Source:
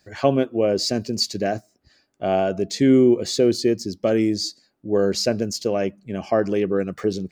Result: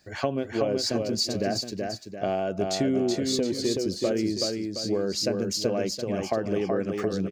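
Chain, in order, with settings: compression 5:1, threshold -24 dBFS, peak gain reduction 11.5 dB; multi-tap echo 376/718 ms -4/-11 dB

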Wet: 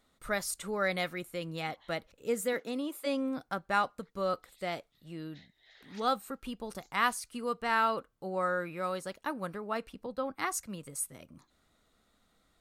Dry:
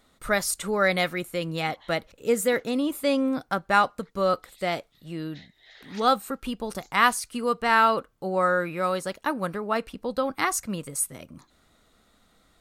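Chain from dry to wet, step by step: 2.53–3.05 s: high-pass 130 Hz -> 420 Hz 24 dB/octave; 10.06–10.85 s: three bands expanded up and down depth 40%; trim -8.5 dB

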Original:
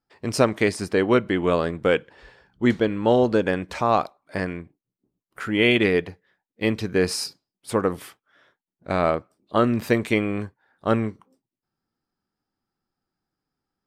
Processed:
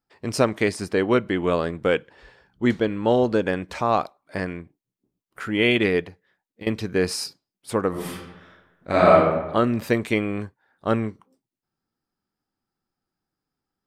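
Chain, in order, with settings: 6.02–6.67 s: compression 6:1, threshold -36 dBFS, peak gain reduction 16.5 dB; 7.90–9.15 s: reverb throw, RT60 1.1 s, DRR -7 dB; trim -1 dB

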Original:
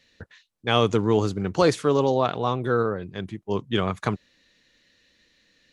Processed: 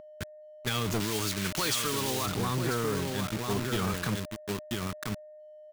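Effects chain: high-pass 55 Hz 12 dB/octave; peak limiter -16 dBFS, peak gain reduction 9.5 dB; delay 993 ms -6.5 dB; word length cut 6-bit, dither none; whistle 610 Hz -35 dBFS; 1.00–2.26 s: tilt shelf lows -6.5 dB, about 910 Hz; transient shaper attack +9 dB, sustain +5 dB; peaking EQ 610 Hz -12 dB 0.93 oct; hard clipper -25 dBFS, distortion -9 dB

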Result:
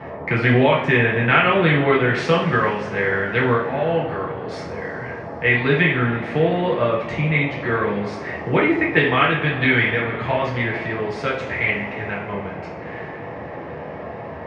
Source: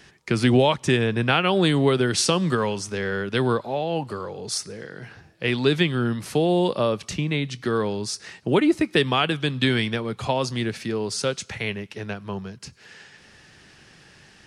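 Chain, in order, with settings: resonant low-pass 2 kHz, resonance Q 3.8; band noise 78–890 Hz -35 dBFS; two-slope reverb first 0.47 s, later 4.4 s, from -21 dB, DRR -4.5 dB; trim -3.5 dB

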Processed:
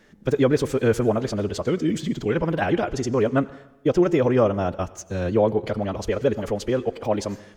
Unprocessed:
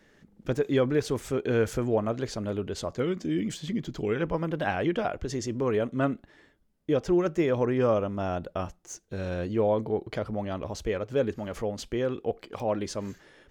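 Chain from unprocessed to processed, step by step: time stretch by phase-locked vocoder 0.56×; plate-style reverb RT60 0.9 s, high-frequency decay 0.95×, pre-delay 75 ms, DRR 18 dB; trim +6.5 dB

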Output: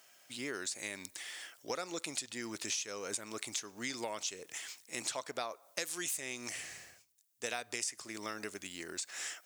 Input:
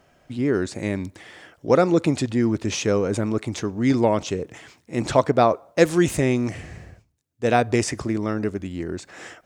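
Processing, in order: differentiator; compression 6:1, threshold -44 dBFS, peak gain reduction 16.5 dB; trim +8.5 dB

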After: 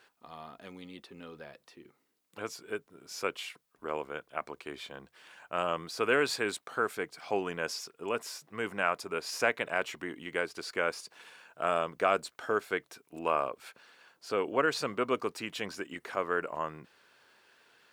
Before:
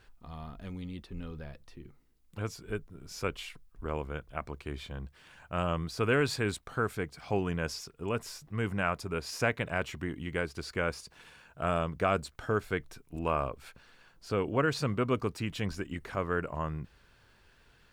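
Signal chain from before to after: high-pass 360 Hz 12 dB/octave; trim +2 dB

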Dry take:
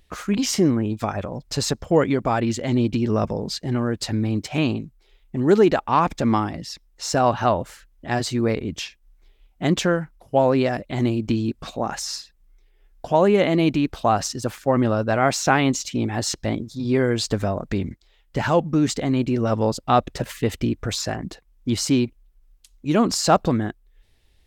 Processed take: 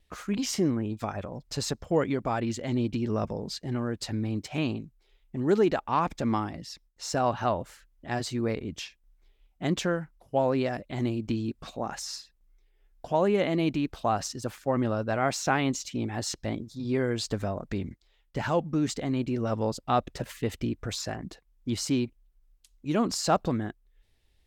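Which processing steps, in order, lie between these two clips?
gate with hold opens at -53 dBFS; trim -7.5 dB

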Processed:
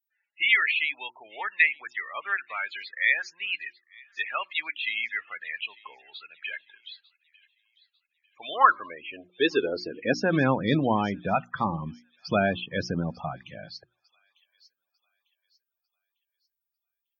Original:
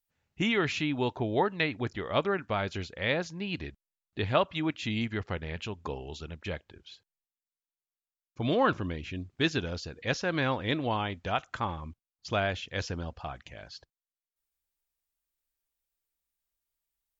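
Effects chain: loudest bins only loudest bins 32; hum notches 60/120/180/240/300/360 Hz; high-pass sweep 1.9 kHz -> 170 Hz, 8.09–10.48 s; on a send: feedback echo behind a high-pass 898 ms, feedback 35%, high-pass 4.4 kHz, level -14 dB; on the sum: trim +5 dB

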